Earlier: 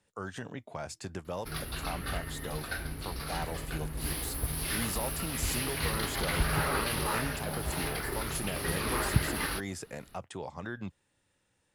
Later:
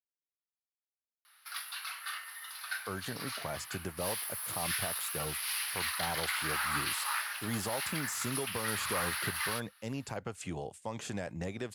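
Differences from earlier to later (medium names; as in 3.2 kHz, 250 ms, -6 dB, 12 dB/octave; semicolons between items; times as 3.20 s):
speech: entry +2.70 s; background: add inverse Chebyshev high-pass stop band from 300 Hz, stop band 60 dB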